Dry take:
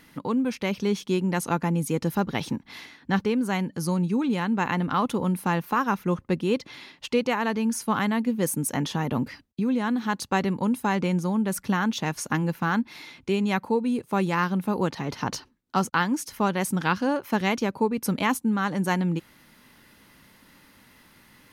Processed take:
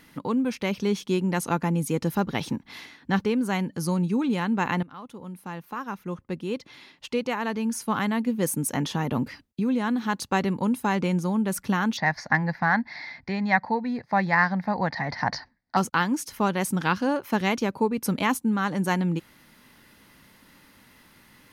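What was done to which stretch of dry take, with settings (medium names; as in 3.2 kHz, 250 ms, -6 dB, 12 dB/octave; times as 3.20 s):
4.83–8.50 s: fade in, from -20.5 dB
11.97–15.77 s: FFT filter 150 Hz 0 dB, 240 Hz -3 dB, 400 Hz -11 dB, 710 Hz +9 dB, 1.3 kHz -3 dB, 1.9 kHz +14 dB, 2.9 kHz -14 dB, 4.7 kHz +6 dB, 8.2 kHz -26 dB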